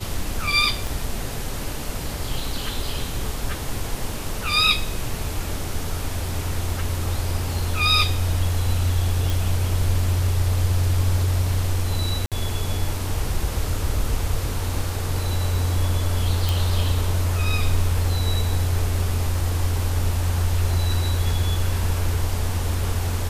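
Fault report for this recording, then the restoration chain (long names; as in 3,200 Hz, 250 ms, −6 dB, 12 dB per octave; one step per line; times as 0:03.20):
0:00.87: click
0:09.30: click
0:12.26–0:12.32: drop-out 57 ms
0:16.49: click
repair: click removal
repair the gap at 0:12.26, 57 ms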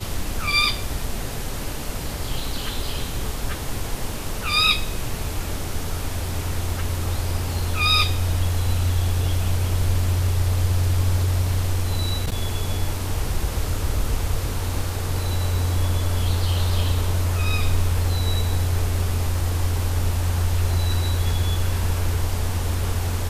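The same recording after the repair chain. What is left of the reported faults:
0:00.87: click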